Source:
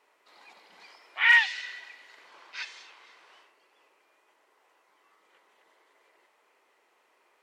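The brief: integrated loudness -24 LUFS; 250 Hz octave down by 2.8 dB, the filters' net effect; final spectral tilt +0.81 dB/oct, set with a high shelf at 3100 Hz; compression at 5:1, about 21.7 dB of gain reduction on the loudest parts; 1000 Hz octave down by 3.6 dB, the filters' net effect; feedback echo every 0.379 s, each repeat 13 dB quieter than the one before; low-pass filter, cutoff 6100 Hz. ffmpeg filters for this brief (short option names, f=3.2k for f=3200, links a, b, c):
-af "lowpass=6.1k,equalizer=f=250:t=o:g=-4,equalizer=f=1k:t=o:g=-3.5,highshelf=f=3.1k:g=-5.5,acompressor=threshold=-43dB:ratio=5,aecho=1:1:379|758|1137:0.224|0.0493|0.0108,volume=23.5dB"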